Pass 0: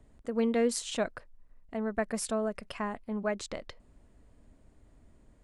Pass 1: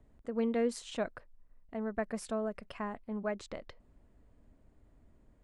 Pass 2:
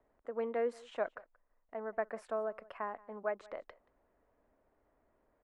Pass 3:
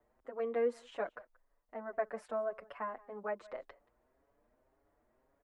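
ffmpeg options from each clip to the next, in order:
ffmpeg -i in.wav -af "highshelf=frequency=4000:gain=-9.5,volume=-3.5dB" out.wav
ffmpeg -i in.wav -filter_complex "[0:a]acrossover=split=410 2100:gain=0.1 1 0.112[link_01][link_02][link_03];[link_01][link_02][link_03]amix=inputs=3:normalize=0,aecho=1:1:179:0.0708,volume=2dB" out.wav
ffmpeg -i in.wav -filter_complex "[0:a]asplit=2[link_01][link_02];[link_02]adelay=6.4,afreqshift=1.8[link_03];[link_01][link_03]amix=inputs=2:normalize=1,volume=2.5dB" out.wav

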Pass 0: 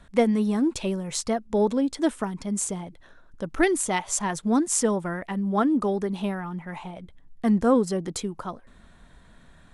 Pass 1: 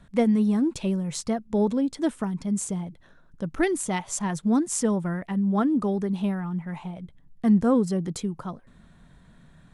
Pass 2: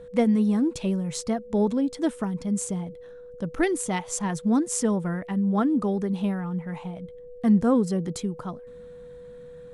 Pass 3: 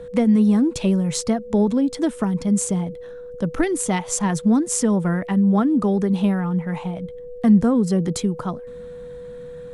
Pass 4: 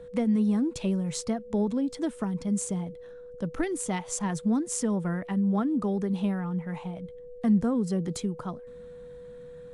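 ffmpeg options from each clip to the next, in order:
ffmpeg -i in.wav -af "equalizer=frequency=150:width_type=o:width=1.3:gain=10,volume=-4dB" out.wav
ffmpeg -i in.wav -af "aeval=exprs='val(0)+0.00891*sin(2*PI*490*n/s)':channel_layout=same" out.wav
ffmpeg -i in.wav -filter_complex "[0:a]acrossover=split=210[link_01][link_02];[link_02]acompressor=threshold=-26dB:ratio=6[link_03];[link_01][link_03]amix=inputs=2:normalize=0,volume=7.5dB" out.wav
ffmpeg -i in.wav -af "volume=-8.5dB" -ar 24000 -c:a aac -b:a 96k out.aac

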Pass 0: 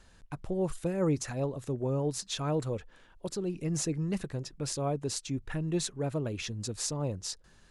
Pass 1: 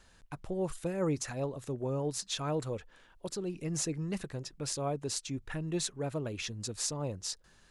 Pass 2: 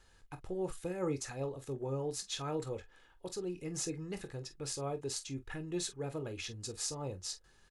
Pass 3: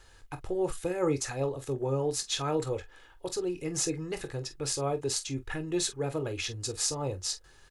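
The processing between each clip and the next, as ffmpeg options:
ffmpeg -i in.wav -af "lowshelf=frequency=490:gain=-4.5" out.wav
ffmpeg -i in.wav -filter_complex "[0:a]aecho=1:1:2.4:0.37,asplit=2[link_01][link_02];[link_02]aecho=0:1:22|45:0.282|0.211[link_03];[link_01][link_03]amix=inputs=2:normalize=0,volume=-4.5dB" out.wav
ffmpeg -i in.wav -af "equalizer=frequency=200:width_type=o:width=0.29:gain=-14.5,volume=8dB" out.wav

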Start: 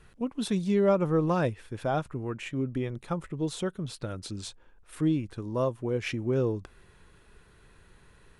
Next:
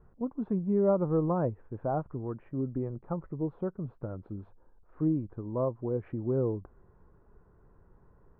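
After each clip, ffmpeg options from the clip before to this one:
ffmpeg -i in.wav -af "lowpass=frequency=1100:width=0.5412,lowpass=frequency=1100:width=1.3066,volume=-2dB" out.wav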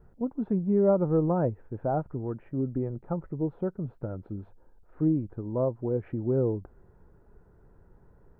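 ffmpeg -i in.wav -af "equalizer=frequency=1100:width_type=o:width=0.2:gain=-10,volume=3dB" out.wav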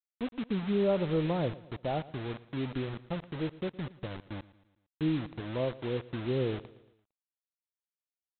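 ffmpeg -i in.wav -af "aresample=8000,acrusher=bits=5:mix=0:aa=0.000001,aresample=44100,aecho=1:1:114|228|342|456:0.112|0.055|0.0269|0.0132,volume=-5dB" out.wav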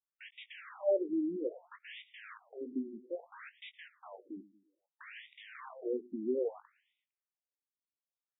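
ffmpeg -i in.wav -filter_complex "[0:a]asplit=2[link_01][link_02];[link_02]adelay=19,volume=-10.5dB[link_03];[link_01][link_03]amix=inputs=2:normalize=0,afftfilt=real='re*between(b*sr/1024,260*pow(2700/260,0.5+0.5*sin(2*PI*0.61*pts/sr))/1.41,260*pow(2700/260,0.5+0.5*sin(2*PI*0.61*pts/sr))*1.41)':imag='im*between(b*sr/1024,260*pow(2700/260,0.5+0.5*sin(2*PI*0.61*pts/sr))/1.41,260*pow(2700/260,0.5+0.5*sin(2*PI*0.61*pts/sr))*1.41)':win_size=1024:overlap=0.75" out.wav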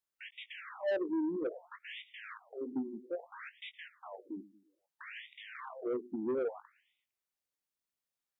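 ffmpeg -i in.wav -af "asoftclip=type=tanh:threshold=-31.5dB,volume=3dB" out.wav

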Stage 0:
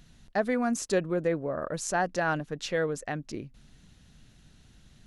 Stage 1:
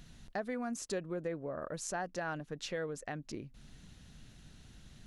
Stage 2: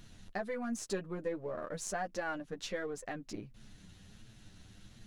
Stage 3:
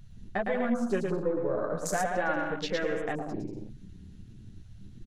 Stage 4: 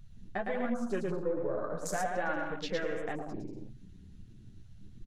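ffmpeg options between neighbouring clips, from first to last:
ffmpeg -i in.wav -af "acompressor=threshold=-45dB:ratio=2,volume=1dB" out.wav
ffmpeg -i in.wav -af "aeval=exprs='if(lt(val(0),0),0.708*val(0),val(0))':channel_layout=same,flanger=delay=9:depth=1.7:regen=0:speed=1.4:shape=triangular,volume=4.5dB" out.wav
ffmpeg -i in.wav -af "aecho=1:1:110|187|240.9|278.6|305:0.631|0.398|0.251|0.158|0.1,afwtdn=0.00562,volume=7dB" out.wav
ffmpeg -i in.wav -af "flanger=delay=0.8:depth=7.5:regen=73:speed=1.2:shape=sinusoidal" out.wav

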